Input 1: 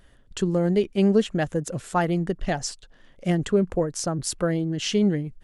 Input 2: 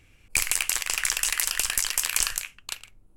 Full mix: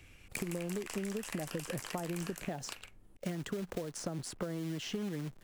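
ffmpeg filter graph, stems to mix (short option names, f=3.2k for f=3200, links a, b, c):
-filter_complex "[0:a]agate=range=-26dB:threshold=-45dB:ratio=16:detection=peak,acompressor=threshold=-24dB:ratio=2,acrusher=bits=3:mode=log:mix=0:aa=0.000001,volume=-1.5dB[a];[1:a]asoftclip=type=hard:threshold=-15dB,volume=1dB[b];[a][b]amix=inputs=2:normalize=0,acrossover=split=110|860|2300[c][d][e][f];[c]acompressor=threshold=-55dB:ratio=4[g];[d]acompressor=threshold=-28dB:ratio=4[h];[e]acompressor=threshold=-46dB:ratio=4[i];[f]acompressor=threshold=-43dB:ratio=4[j];[g][h][i][j]amix=inputs=4:normalize=0,acompressor=threshold=-35dB:ratio=4"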